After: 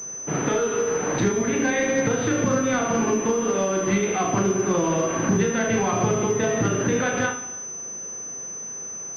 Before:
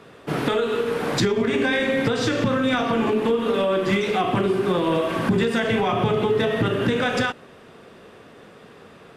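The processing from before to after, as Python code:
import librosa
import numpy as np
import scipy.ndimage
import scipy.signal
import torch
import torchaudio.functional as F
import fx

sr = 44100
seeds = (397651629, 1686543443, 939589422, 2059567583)

y = fx.room_early_taps(x, sr, ms=(36, 75), db=(-7.0, -12.5))
y = fx.rev_gated(y, sr, seeds[0], gate_ms=400, shape='falling', drr_db=10.0)
y = fx.pwm(y, sr, carrier_hz=6100.0)
y = y * 10.0 ** (-2.0 / 20.0)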